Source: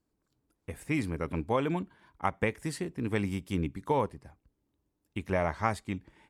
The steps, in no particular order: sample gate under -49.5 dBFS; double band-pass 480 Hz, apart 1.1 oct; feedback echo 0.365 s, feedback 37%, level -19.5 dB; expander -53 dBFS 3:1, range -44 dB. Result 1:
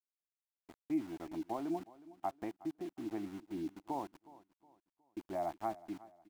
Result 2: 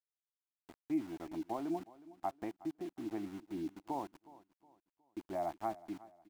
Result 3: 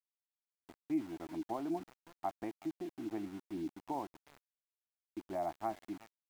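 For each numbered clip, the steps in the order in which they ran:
double band-pass > sample gate > expander > feedback echo; double band-pass > expander > sample gate > feedback echo; double band-pass > expander > feedback echo > sample gate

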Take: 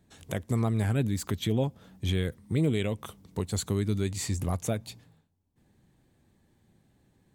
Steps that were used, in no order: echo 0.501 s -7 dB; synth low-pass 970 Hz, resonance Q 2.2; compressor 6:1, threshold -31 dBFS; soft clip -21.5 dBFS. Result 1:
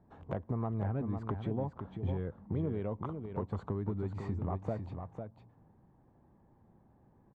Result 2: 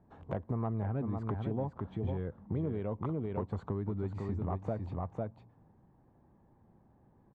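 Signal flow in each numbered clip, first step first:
synth low-pass > compressor > soft clip > echo; echo > compressor > synth low-pass > soft clip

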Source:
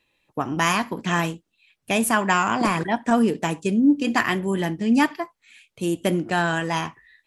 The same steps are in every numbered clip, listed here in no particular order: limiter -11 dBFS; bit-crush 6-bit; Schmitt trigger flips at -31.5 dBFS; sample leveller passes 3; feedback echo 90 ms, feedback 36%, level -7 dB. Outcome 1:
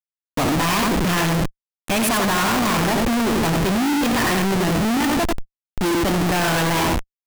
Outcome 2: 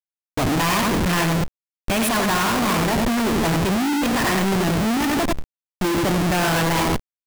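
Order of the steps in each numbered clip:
limiter > bit-crush > feedback echo > Schmitt trigger > sample leveller; feedback echo > limiter > Schmitt trigger > sample leveller > bit-crush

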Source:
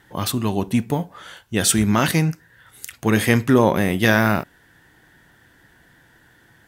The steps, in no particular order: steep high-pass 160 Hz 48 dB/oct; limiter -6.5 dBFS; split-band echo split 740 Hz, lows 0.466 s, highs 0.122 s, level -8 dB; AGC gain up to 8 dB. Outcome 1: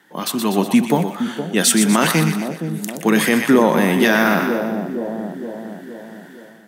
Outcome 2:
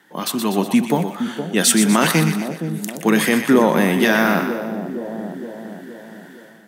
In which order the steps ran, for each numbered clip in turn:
split-band echo > limiter > steep high-pass > AGC; limiter > split-band echo > AGC > steep high-pass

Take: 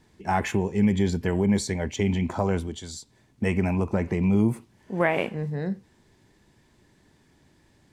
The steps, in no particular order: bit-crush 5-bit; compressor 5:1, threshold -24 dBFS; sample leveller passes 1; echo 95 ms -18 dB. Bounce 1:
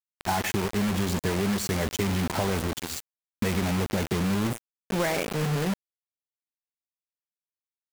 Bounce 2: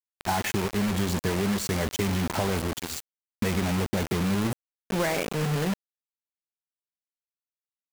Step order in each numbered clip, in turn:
echo > sample leveller > compressor > bit-crush; sample leveller > compressor > echo > bit-crush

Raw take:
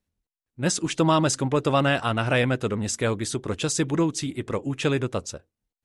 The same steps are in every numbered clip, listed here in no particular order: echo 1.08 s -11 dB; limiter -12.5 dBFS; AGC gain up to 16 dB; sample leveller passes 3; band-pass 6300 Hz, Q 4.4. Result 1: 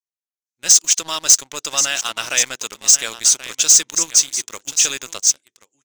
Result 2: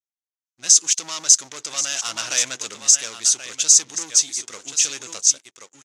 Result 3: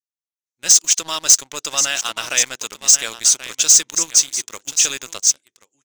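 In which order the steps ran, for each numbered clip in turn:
limiter > band-pass > AGC > echo > sample leveller; limiter > echo > sample leveller > band-pass > AGC; echo > limiter > band-pass > sample leveller > AGC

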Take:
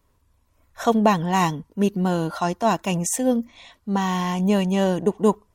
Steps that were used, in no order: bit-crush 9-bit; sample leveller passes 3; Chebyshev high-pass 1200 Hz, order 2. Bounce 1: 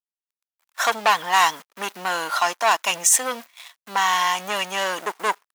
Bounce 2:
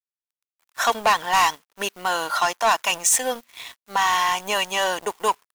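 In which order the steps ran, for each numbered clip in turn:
bit-crush > sample leveller > Chebyshev high-pass; bit-crush > Chebyshev high-pass > sample leveller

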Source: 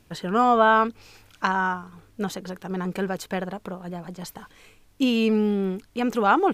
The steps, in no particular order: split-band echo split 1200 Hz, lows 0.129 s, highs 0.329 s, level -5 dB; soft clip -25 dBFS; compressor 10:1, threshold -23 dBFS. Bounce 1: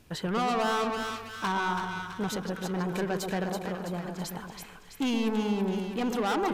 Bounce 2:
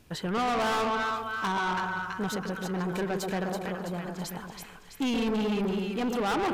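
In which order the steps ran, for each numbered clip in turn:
soft clip > split-band echo > compressor; split-band echo > soft clip > compressor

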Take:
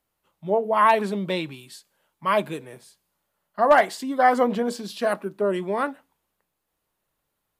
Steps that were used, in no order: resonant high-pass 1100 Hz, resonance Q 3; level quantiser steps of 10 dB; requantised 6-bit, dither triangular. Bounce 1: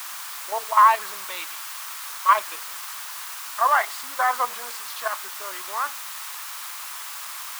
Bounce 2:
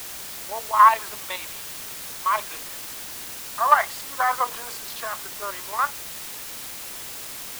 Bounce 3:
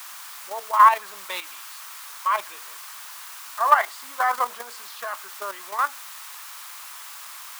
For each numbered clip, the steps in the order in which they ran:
level quantiser > requantised > resonant high-pass; resonant high-pass > level quantiser > requantised; requantised > resonant high-pass > level quantiser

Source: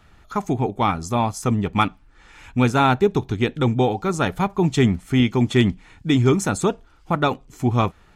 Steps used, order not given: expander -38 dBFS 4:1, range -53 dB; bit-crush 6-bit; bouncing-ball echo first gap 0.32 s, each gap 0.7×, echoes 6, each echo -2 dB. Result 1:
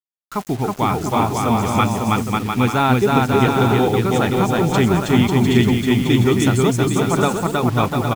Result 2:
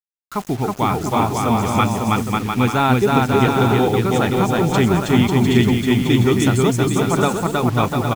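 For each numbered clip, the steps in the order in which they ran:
expander > bouncing-ball echo > bit-crush; bouncing-ball echo > expander > bit-crush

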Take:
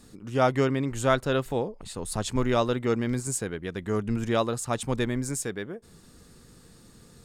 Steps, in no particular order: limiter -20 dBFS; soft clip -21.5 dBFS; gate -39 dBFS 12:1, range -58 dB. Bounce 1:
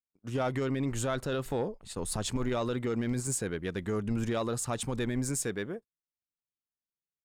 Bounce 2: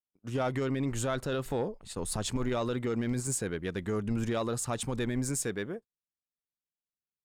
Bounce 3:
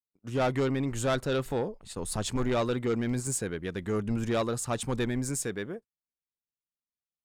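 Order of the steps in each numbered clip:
limiter > gate > soft clip; gate > limiter > soft clip; gate > soft clip > limiter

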